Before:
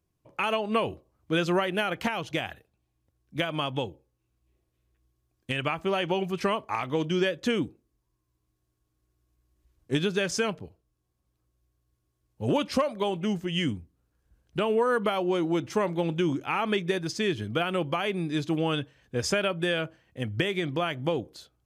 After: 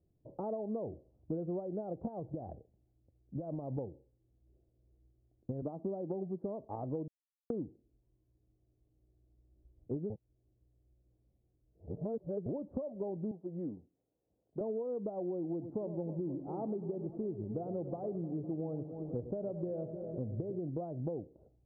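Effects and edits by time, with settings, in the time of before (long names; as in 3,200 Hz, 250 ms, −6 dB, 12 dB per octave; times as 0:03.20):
0:02.19–0:03.78: downward compressor, threshold −31 dBFS
0:05.62–0:06.44: high-pass with resonance 210 Hz, resonance Q 1.7
0:07.08–0:07.50: silence
0:10.10–0:12.46: reverse
0:13.31–0:14.61: meter weighting curve A
0:15.50–0:20.59: delay that swaps between a low-pass and a high-pass 101 ms, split 1,200 Hz, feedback 80%, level −12 dB
whole clip: Butterworth low-pass 700 Hz 36 dB per octave; downward compressor 6 to 1, threshold −39 dBFS; level +3 dB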